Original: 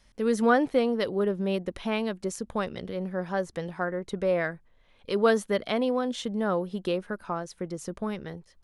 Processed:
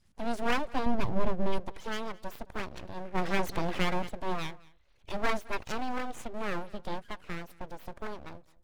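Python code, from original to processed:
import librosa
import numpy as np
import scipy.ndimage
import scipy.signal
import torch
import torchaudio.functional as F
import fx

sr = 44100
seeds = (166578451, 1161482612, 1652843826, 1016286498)

p1 = fx.spec_quant(x, sr, step_db=30)
p2 = fx.high_shelf(p1, sr, hz=5800.0, db=-4.0)
p3 = np.abs(p2)
p4 = fx.low_shelf(p3, sr, hz=450.0, db=11.0, at=(0.86, 1.6))
p5 = p4 + fx.echo_single(p4, sr, ms=217, db=-23.0, dry=0)
p6 = fx.env_flatten(p5, sr, amount_pct=50, at=(3.14, 4.07), fade=0.02)
y = p6 * 10.0 ** (-4.0 / 20.0)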